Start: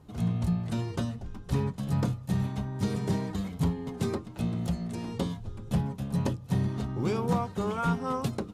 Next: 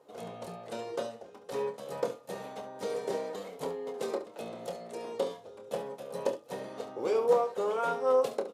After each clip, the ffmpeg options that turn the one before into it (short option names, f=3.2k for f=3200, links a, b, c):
-filter_complex "[0:a]highpass=f=500:t=q:w=4.9,asplit=2[a][b];[b]aecho=0:1:27|70:0.376|0.251[c];[a][c]amix=inputs=2:normalize=0,volume=-4dB"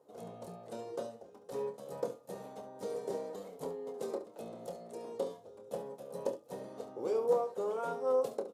-af "equalizer=f=2.4k:w=0.57:g=-10,volume=-3dB"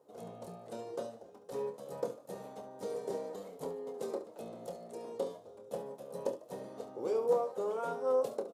-filter_complex "[0:a]asplit=3[a][b][c];[b]adelay=148,afreqshift=78,volume=-21.5dB[d];[c]adelay=296,afreqshift=156,volume=-31.1dB[e];[a][d][e]amix=inputs=3:normalize=0"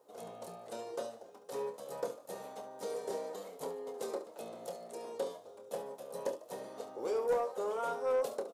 -filter_complex "[0:a]highshelf=f=8.5k:g=7.5,asplit=2[a][b];[b]highpass=f=720:p=1,volume=13dB,asoftclip=type=tanh:threshold=-18dB[c];[a][c]amix=inputs=2:normalize=0,lowpass=f=7.5k:p=1,volume=-6dB,volume=-4dB"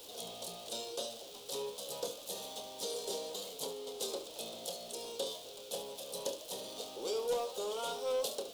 -af "aeval=exprs='val(0)+0.5*0.00355*sgn(val(0))':c=same,highshelf=f=2.5k:t=q:w=3:g=10.5,volume=-3dB"